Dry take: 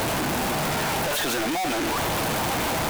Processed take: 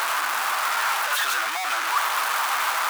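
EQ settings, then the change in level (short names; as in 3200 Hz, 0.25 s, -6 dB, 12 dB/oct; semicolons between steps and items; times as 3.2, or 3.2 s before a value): resonant high-pass 1200 Hz, resonance Q 2.9; 0.0 dB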